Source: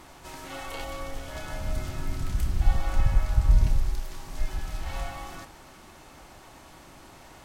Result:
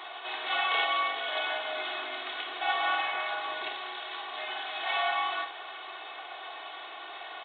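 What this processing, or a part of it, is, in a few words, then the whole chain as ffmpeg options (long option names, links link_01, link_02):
musical greeting card: -filter_complex "[0:a]equalizer=frequency=3400:width_type=o:width=0.77:gain=2,aecho=1:1:2.7:0.77,aresample=8000,aresample=44100,highpass=frequency=530:width=0.5412,highpass=frequency=530:width=1.3066,equalizer=frequency=3900:width_type=o:width=0.51:gain=7,asplit=2[link_01][link_02];[link_02]adelay=47,volume=-11dB[link_03];[link_01][link_03]amix=inputs=2:normalize=0,volume=7dB"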